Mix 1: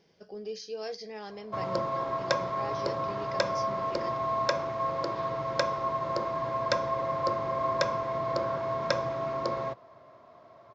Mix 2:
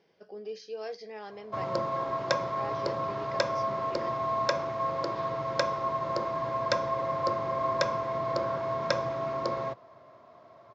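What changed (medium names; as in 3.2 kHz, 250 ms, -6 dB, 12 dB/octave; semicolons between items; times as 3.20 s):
speech: add tone controls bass -8 dB, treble -10 dB; master: add high-pass 59 Hz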